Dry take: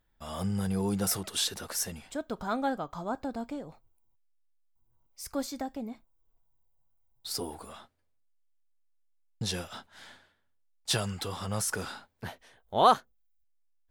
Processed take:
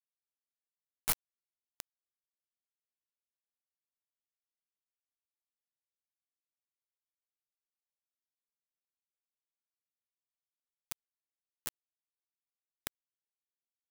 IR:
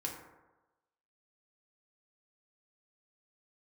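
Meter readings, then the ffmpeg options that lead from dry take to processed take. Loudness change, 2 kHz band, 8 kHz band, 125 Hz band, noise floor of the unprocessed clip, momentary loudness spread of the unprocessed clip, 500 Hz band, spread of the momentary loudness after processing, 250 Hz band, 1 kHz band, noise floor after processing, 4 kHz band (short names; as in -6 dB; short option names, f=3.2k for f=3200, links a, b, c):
-7.5 dB, -12.5 dB, -11.0 dB, -26.5 dB, -72 dBFS, 16 LU, -27.5 dB, 18 LU, -30.0 dB, -25.5 dB, under -85 dBFS, -16.5 dB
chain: -af "aeval=exprs='(tanh(7.08*val(0)+0.25)-tanh(0.25))/7.08':c=same,lowshelf=f=350:g=-6,aecho=1:1:3.4:0.36,bandreject=f=219.1:t=h:w=4,bandreject=f=438.2:t=h:w=4,bandreject=f=657.3:t=h:w=4,bandreject=f=876.4:t=h:w=4,bandreject=f=1.0955k:t=h:w=4,bandreject=f=1.3146k:t=h:w=4,bandreject=f=1.5337k:t=h:w=4,bandreject=f=1.7528k:t=h:w=4,bandreject=f=1.9719k:t=h:w=4,flanger=delay=20:depth=7:speed=0.91,aeval=exprs='max(val(0),0)':c=same,afftfilt=real='re*(1-between(b*sr/4096,180,8300))':imag='im*(1-between(b*sr/4096,180,8300))':win_size=4096:overlap=0.75,acrusher=bits=4:mix=0:aa=0.000001,volume=10.5dB"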